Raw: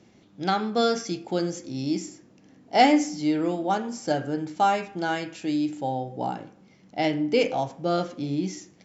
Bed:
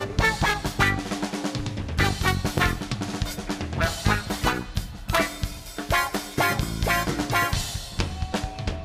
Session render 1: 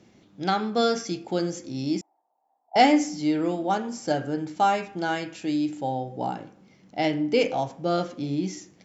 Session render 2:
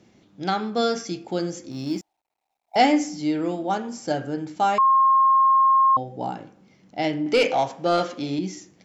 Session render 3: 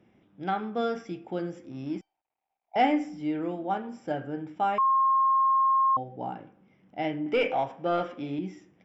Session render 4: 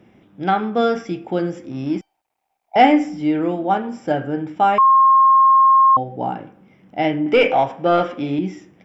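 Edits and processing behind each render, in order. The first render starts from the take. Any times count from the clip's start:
2.01–2.76 Butterworth band-pass 810 Hz, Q 3.8
1.71–2.76 G.711 law mismatch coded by A; 4.78–5.97 bleep 1070 Hz -13.5 dBFS; 7.26–8.39 overdrive pedal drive 14 dB, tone 6700 Hz, clips at -9 dBFS
polynomial smoothing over 25 samples; resonator 770 Hz, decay 0.33 s, mix 50%
gain +11 dB

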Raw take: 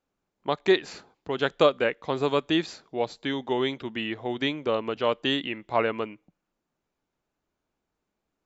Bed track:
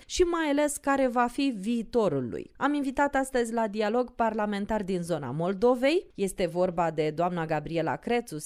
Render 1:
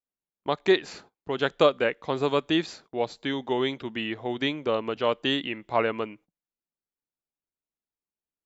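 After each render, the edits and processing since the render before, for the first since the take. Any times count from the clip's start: gate -51 dBFS, range -20 dB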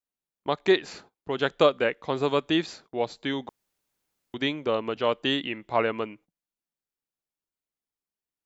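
3.49–4.34 room tone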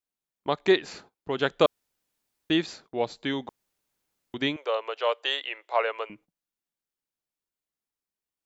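1.66–2.5 room tone; 4.56–6.1 steep high-pass 470 Hz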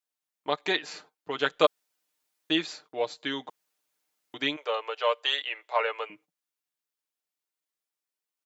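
HPF 610 Hz 6 dB/oct; comb 6.6 ms, depth 58%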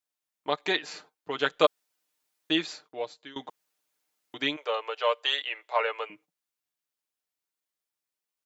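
2.73–3.36 fade out, to -20 dB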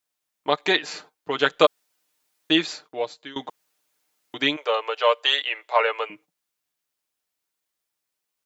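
gain +6.5 dB; limiter -3 dBFS, peak gain reduction 3 dB

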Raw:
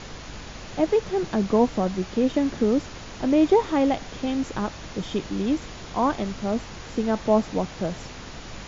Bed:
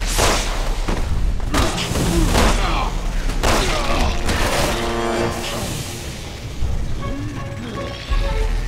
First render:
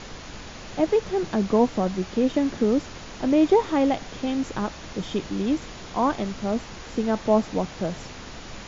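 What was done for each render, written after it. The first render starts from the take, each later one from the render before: de-hum 50 Hz, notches 3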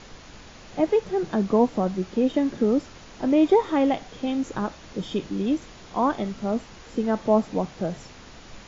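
noise print and reduce 6 dB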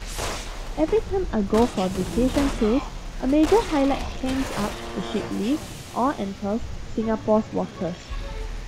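add bed -12.5 dB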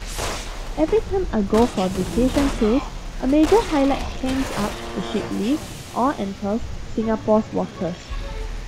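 gain +2.5 dB

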